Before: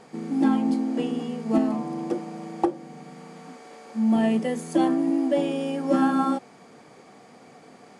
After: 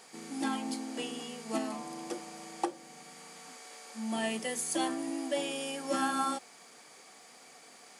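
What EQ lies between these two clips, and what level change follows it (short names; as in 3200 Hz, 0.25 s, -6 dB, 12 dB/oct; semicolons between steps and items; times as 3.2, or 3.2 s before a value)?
tilt +4.5 dB/oct; -5.5 dB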